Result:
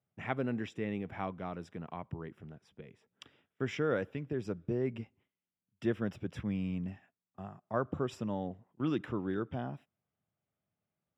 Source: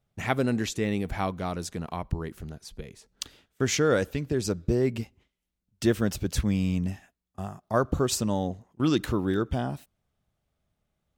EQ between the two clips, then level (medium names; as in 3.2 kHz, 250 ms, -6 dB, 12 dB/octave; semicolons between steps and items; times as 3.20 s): Savitzky-Golay filter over 25 samples; high-pass 100 Hz 24 dB/octave; -8.5 dB